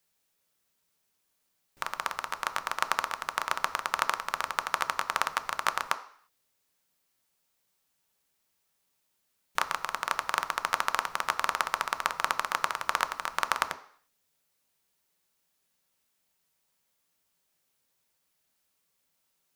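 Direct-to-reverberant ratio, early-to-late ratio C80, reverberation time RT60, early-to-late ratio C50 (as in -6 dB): 8.0 dB, 18.0 dB, 0.55 s, 15.0 dB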